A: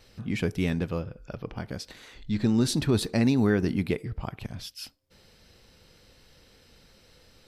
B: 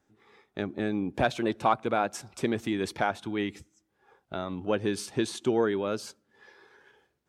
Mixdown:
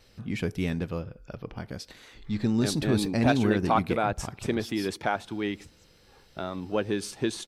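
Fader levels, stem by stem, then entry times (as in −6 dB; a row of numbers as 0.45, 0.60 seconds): −2.0, 0.0 decibels; 0.00, 2.05 seconds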